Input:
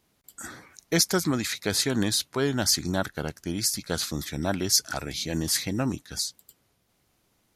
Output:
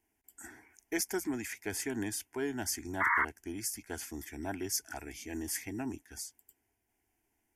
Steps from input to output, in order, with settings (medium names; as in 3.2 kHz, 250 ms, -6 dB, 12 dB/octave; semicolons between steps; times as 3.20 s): static phaser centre 810 Hz, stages 8; painted sound noise, 3.00–3.25 s, 880–2200 Hz -21 dBFS; trim -7 dB